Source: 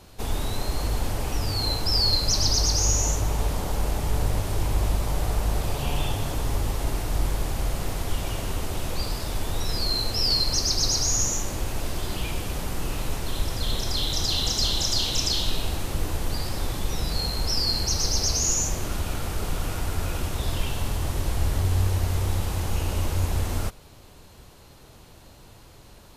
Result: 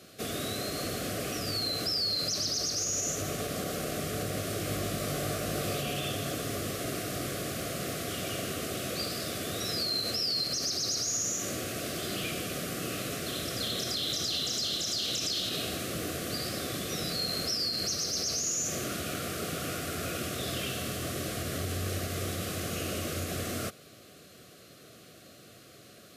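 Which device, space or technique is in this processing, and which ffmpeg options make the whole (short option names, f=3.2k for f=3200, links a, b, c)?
PA system with an anti-feedback notch: -filter_complex "[0:a]highpass=150,asuperstop=centerf=910:order=8:qfactor=2.5,alimiter=limit=-22.5dB:level=0:latency=1:release=60,highpass=84,asettb=1/sr,asplit=3[a][b][c];[a]atrim=end=4.654[d];[b]atrim=start=4.65:end=5.81,asetpts=PTS-STARTPTS,afade=t=in:d=0.004:c=qsin,afade=t=out:st=1.156:d=0.004:c=qsin,asplit=2[e][f];[f]adelay=20,volume=-6dB[g];[e][g]amix=inputs=2:normalize=0,atrim=end_sample=51156[h];[c]atrim=start=5.806[i];[d][h]acrossfade=d=0.004:c1=hsin:c2=qsin[j];[j][i]acrossfade=d=0.004:c1=qsin:c2=hsin"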